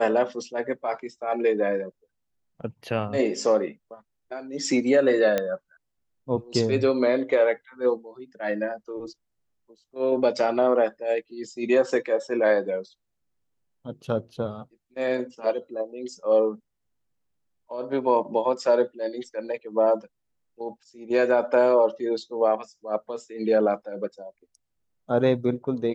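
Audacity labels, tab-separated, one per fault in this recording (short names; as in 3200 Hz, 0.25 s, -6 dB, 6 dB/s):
5.380000	5.380000	pop -11 dBFS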